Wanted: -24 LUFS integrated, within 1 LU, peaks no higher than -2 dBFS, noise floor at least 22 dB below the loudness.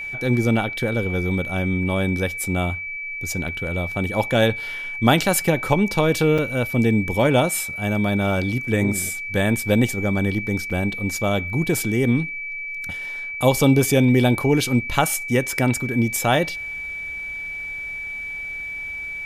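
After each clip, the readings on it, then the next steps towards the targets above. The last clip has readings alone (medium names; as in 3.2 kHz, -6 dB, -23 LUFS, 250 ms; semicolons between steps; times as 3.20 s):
dropouts 3; longest dropout 5.3 ms; steady tone 2.3 kHz; tone level -28 dBFS; loudness -21.5 LUFS; peak level -3.5 dBFS; loudness target -24.0 LUFS
-> interpolate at 3.48/6.38/10.70 s, 5.3 ms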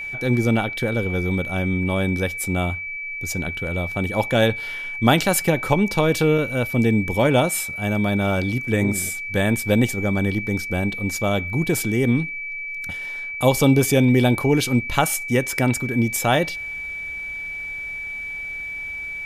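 dropouts 0; steady tone 2.3 kHz; tone level -28 dBFS
-> band-stop 2.3 kHz, Q 30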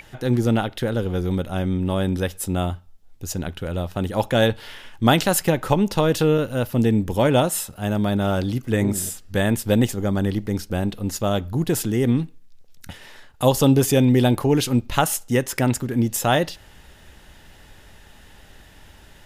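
steady tone not found; loudness -21.5 LUFS; peak level -4.0 dBFS; loudness target -24.0 LUFS
-> trim -2.5 dB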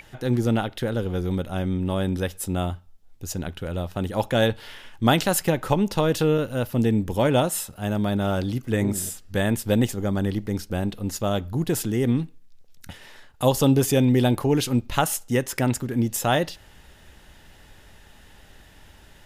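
loudness -24.0 LUFS; peak level -6.5 dBFS; noise floor -51 dBFS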